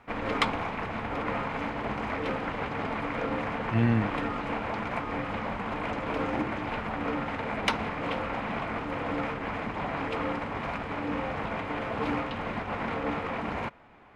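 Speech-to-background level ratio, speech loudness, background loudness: 4.0 dB, -28.0 LUFS, -32.0 LUFS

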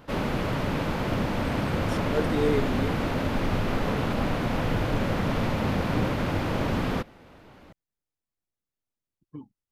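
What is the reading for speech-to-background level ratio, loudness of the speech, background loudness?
-4.0 dB, -31.5 LUFS, -27.5 LUFS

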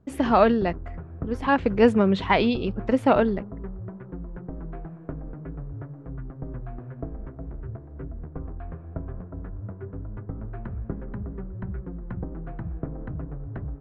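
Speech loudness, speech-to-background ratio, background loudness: -22.0 LUFS, 15.5 dB, -37.5 LUFS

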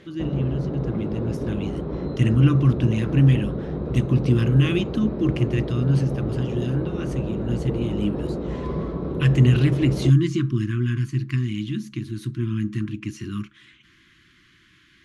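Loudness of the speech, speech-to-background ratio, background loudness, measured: -23.0 LUFS, 6.0 dB, -29.0 LUFS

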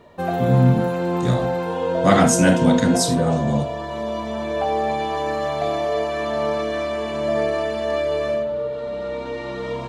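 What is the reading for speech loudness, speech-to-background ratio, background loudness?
-19.0 LUFS, 4.5 dB, -23.5 LUFS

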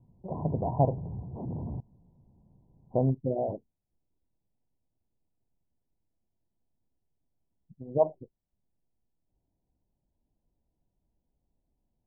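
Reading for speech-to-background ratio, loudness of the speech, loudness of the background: 8.5 dB, -30.0 LUFS, -38.5 LUFS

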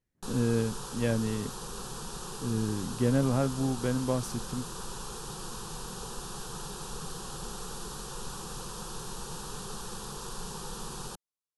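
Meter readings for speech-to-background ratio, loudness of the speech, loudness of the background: 9.0 dB, -31.0 LUFS, -40.0 LUFS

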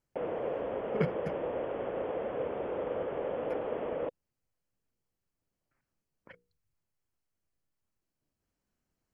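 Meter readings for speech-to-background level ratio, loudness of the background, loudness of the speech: -2.0 dB, -35.5 LUFS, -37.5 LUFS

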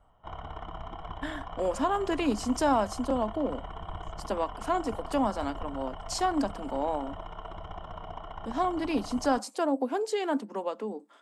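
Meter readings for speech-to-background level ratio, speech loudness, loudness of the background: 11.5 dB, -30.5 LUFS, -42.0 LUFS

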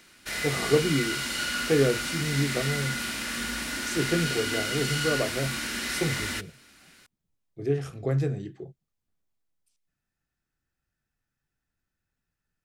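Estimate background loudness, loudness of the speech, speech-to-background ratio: -29.5 LUFS, -29.0 LUFS, 0.5 dB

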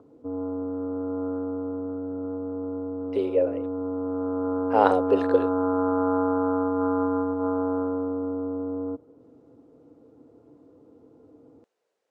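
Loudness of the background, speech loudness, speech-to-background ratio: -28.0 LUFS, -25.0 LUFS, 3.0 dB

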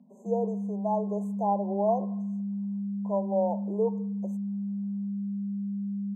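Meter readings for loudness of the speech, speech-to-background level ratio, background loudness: -31.0 LUFS, 2.0 dB, -33.0 LUFS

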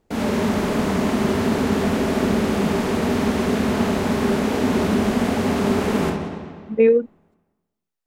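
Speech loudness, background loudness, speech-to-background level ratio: -18.5 LUFS, -21.0 LUFS, 2.5 dB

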